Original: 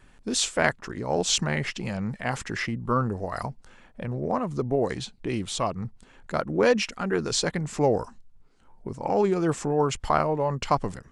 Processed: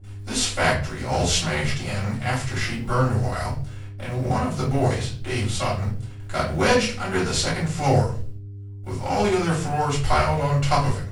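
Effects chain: formants flattened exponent 0.6; hum notches 60/120/180/240/300/360/420/480/540/600 Hz; gate with hold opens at -41 dBFS; peaking EQ 310 Hz -13.5 dB 0.22 oct; mains buzz 100 Hz, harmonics 4, -50 dBFS -4 dB/octave; peaking EQ 66 Hz +14.5 dB 0.77 oct; reverberation RT60 0.40 s, pre-delay 3 ms, DRR -7.5 dB; trim -7.5 dB

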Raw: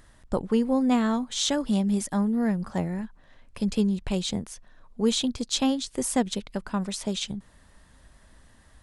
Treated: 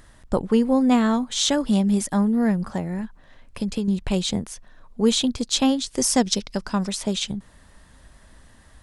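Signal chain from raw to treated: 2.72–3.88 s: compression 6:1, threshold -27 dBFS, peak gain reduction 8.5 dB; 5.95–6.89 s: peaking EQ 5.4 kHz +14 dB 0.53 oct; trim +4.5 dB

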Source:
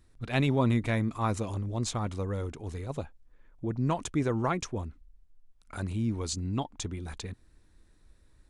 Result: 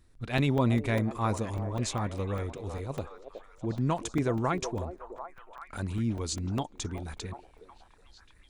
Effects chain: repeats whose band climbs or falls 370 ms, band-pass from 510 Hz, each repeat 0.7 oct, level -6 dB; crackling interface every 0.20 s, samples 128, zero, from 0.38 s

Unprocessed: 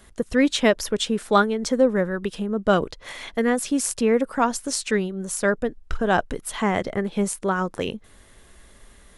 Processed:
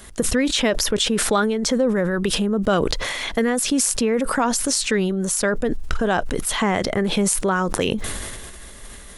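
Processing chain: treble shelf 3.5 kHz +5.5 dB; compression 4:1, threshold -26 dBFS, peak gain reduction 12.5 dB; dynamic bell 9.7 kHz, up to -3 dB, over -43 dBFS, Q 0.76; decay stretcher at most 26 dB/s; trim +7.5 dB

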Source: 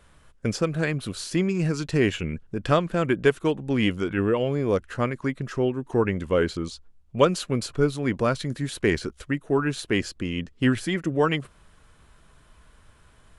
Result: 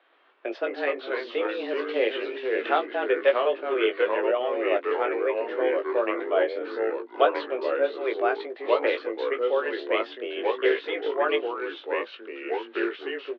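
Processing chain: ever faster or slower copies 125 ms, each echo -3 st, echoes 3; doubling 19 ms -6 dB; mistuned SSB +130 Hz 230–3500 Hz; trim -3 dB

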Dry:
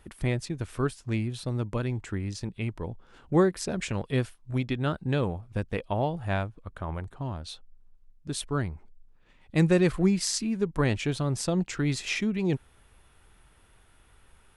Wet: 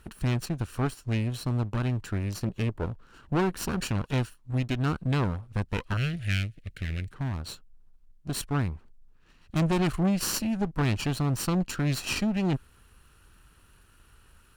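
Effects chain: comb filter that takes the minimum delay 0.71 ms; 2.34–2.86 s: dynamic bell 470 Hz, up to +8 dB, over -50 dBFS, Q 0.74; valve stage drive 25 dB, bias 0.4; 5.97–7.11 s: FFT filter 130 Hz 0 dB, 630 Hz -7 dB, 1 kHz -27 dB, 2 kHz +9 dB, 5.8 kHz +4 dB; trim +4 dB

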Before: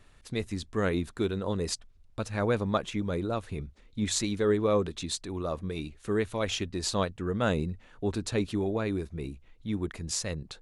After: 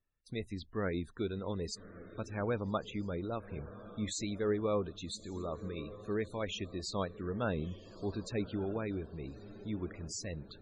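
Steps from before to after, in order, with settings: echo that smears into a reverb 1190 ms, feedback 42%, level -14.5 dB; gate with hold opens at -40 dBFS; loudest bins only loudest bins 64; trim -7 dB

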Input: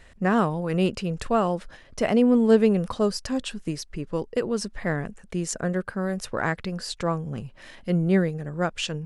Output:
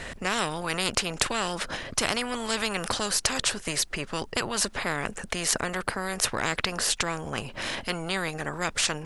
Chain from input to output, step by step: spectrum-flattening compressor 4:1; trim +2.5 dB

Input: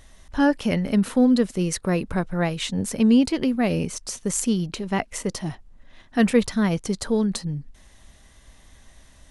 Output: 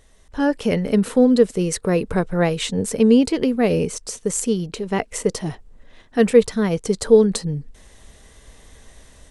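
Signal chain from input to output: peaking EQ 8 kHz +4.5 dB 0.27 oct; level rider gain up to 9 dB; peaking EQ 450 Hz +11 dB 0.38 oct; trim -5 dB

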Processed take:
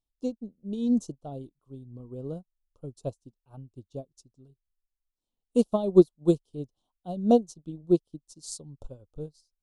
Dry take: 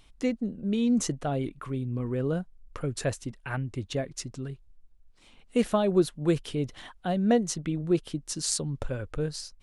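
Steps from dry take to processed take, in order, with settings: Butterworth band-stop 1.9 kHz, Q 0.66; upward expansion 2.5:1, over -42 dBFS; trim +7.5 dB

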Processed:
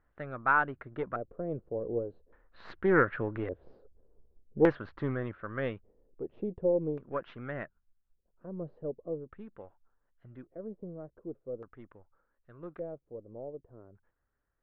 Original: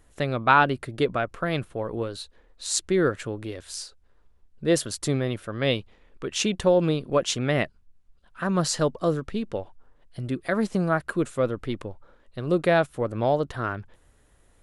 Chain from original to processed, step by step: partial rectifier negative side -3 dB; Doppler pass-by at 3.64 s, 8 m/s, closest 6.3 m; low-pass 3.9 kHz 24 dB/octave; LFO low-pass square 0.43 Hz 480–1500 Hz; loudspeaker Doppler distortion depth 0.13 ms

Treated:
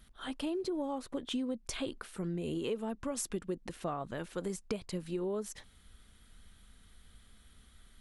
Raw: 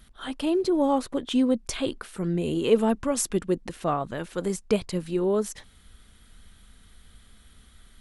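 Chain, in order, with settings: compression 10:1, threshold -26 dBFS, peak gain reduction 13 dB; trim -6 dB

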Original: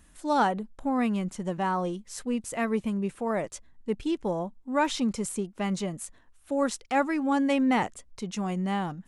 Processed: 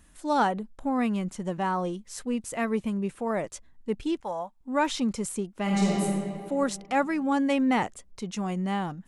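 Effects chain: 4.20–4.61 s: resonant low shelf 510 Hz -12 dB, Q 1.5; 5.62–6.03 s: reverb throw, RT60 2.3 s, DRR -5 dB

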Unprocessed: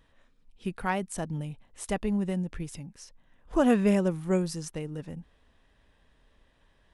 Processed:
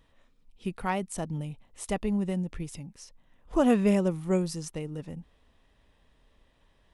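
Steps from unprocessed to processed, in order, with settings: peaking EQ 1.6 kHz -6 dB 0.26 oct

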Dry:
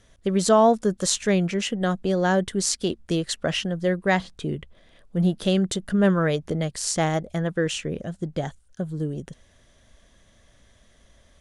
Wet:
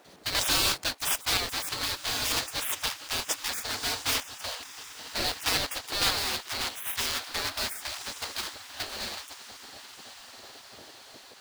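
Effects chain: block-companded coder 3-bit; gate with hold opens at -48 dBFS; peaking EQ 4.3 kHz +14 dB 0.47 oct; on a send: echo that smears into a reverb 1257 ms, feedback 53%, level -15.5 dB; on the sum: added noise brown -42 dBFS; in parallel at -10 dB: sample-and-hold 22×; on the sum: spectral gate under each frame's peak -20 dB weak

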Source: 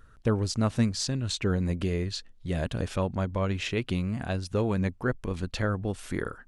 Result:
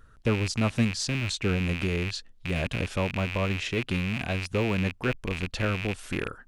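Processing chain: rattle on loud lows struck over -36 dBFS, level -21 dBFS

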